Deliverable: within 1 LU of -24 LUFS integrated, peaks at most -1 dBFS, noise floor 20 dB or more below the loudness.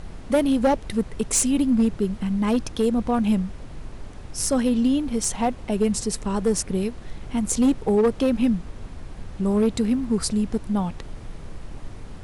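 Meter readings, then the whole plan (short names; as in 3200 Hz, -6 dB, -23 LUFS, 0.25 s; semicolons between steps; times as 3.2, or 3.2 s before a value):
clipped 0.7%; flat tops at -13.5 dBFS; noise floor -39 dBFS; noise floor target -43 dBFS; loudness -23.0 LUFS; peak -13.5 dBFS; loudness target -24.0 LUFS
-> clip repair -13.5 dBFS; noise print and reduce 6 dB; gain -1 dB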